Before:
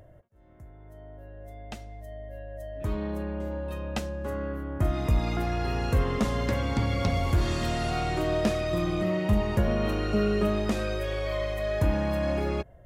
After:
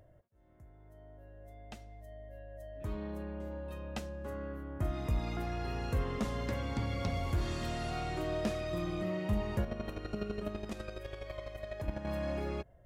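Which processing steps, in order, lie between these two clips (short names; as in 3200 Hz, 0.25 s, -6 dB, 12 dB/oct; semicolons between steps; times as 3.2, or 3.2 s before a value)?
9.63–12.07 chopper 12 Hz, depth 60%, duty 20%; gain -8.5 dB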